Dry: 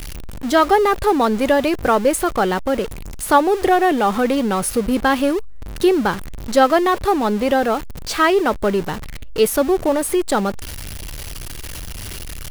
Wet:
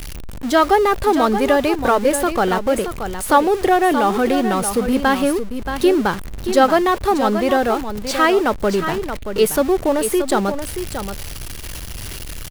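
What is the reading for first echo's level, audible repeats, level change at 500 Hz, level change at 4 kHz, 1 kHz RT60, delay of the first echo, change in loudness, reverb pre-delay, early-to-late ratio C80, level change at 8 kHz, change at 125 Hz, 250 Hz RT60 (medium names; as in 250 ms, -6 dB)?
-9.0 dB, 1, +0.5 dB, +0.5 dB, no reverb, 627 ms, 0.0 dB, no reverb, no reverb, +0.5 dB, +0.5 dB, no reverb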